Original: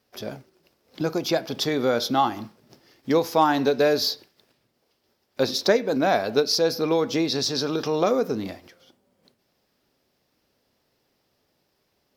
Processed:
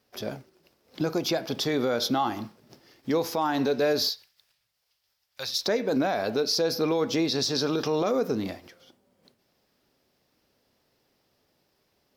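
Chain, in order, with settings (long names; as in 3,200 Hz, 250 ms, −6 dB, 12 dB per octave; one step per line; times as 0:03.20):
0:04.09–0:05.66: guitar amp tone stack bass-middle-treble 10-0-10
brickwall limiter −16.5 dBFS, peak gain reduction 9.5 dB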